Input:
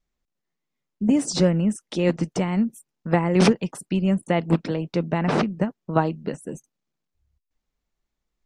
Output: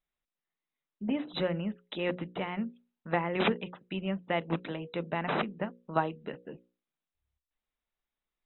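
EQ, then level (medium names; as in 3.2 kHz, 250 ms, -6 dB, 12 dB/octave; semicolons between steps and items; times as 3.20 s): brick-wall FIR low-pass 4 kHz; bass shelf 440 Hz -11 dB; hum notches 60/120/180/240/300/360/420/480/540 Hz; -3.5 dB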